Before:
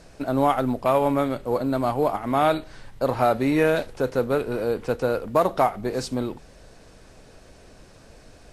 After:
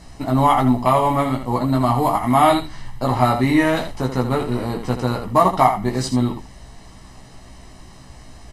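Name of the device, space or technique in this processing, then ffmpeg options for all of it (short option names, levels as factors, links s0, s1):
slapback doubling: -filter_complex "[0:a]asettb=1/sr,asplit=3[s0][s1][s2];[s0]atrim=end=1.944[s3];[s1]atrim=start=1.94:end=2.59,asetpts=PTS-STARTPTS,afade=t=in:d=0.004:c=qsin,afade=t=out:st=0.646:d=0.004:c=qsin,highshelf=f=8500:g=10[s4];[s2]atrim=start=2.586[s5];[s3][s4]acrossfade=d=0.004:c1=hsin:c2=qsin[s6];[s6][s5]acrossfade=d=0.004:c1=qsin:c2=hsin,asplit=3[s7][s8][s9];[s8]adelay=16,volume=0.708[s10];[s9]adelay=82,volume=0.398[s11];[s7][s10][s11]amix=inputs=3:normalize=0,aecho=1:1:1:0.68,volume=1.41"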